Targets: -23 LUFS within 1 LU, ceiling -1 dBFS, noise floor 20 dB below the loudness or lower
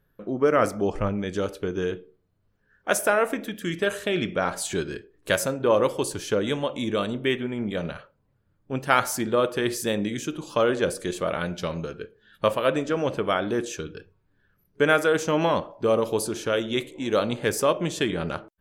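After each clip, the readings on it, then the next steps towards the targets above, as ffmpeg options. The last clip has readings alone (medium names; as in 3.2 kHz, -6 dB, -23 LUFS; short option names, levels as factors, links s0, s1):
loudness -25.5 LUFS; peak level -4.0 dBFS; loudness target -23.0 LUFS
-> -af "volume=1.33"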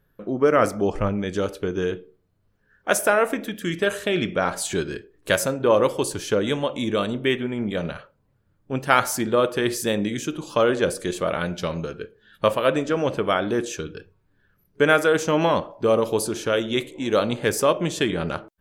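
loudness -23.0 LUFS; peak level -1.5 dBFS; noise floor -66 dBFS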